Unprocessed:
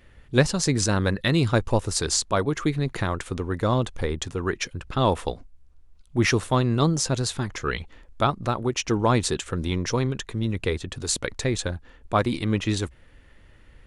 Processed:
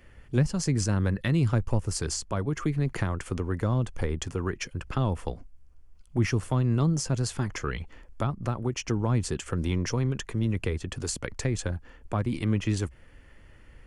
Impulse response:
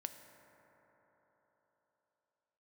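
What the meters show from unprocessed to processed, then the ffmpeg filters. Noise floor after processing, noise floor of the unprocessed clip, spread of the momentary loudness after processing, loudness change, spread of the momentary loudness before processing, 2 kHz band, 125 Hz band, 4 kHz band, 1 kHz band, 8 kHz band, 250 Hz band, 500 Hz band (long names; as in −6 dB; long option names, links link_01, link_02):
−53 dBFS, −53 dBFS, 7 LU, −4.0 dB, 8 LU, −7.5 dB, −0.5 dB, −9.0 dB, −9.5 dB, −6.5 dB, −3.5 dB, −7.5 dB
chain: -filter_complex "[0:a]equalizer=frequency=3800:width=7.9:gain=-13.5,acrossover=split=220[link_01][link_02];[link_02]acompressor=threshold=-30dB:ratio=6[link_03];[link_01][link_03]amix=inputs=2:normalize=0"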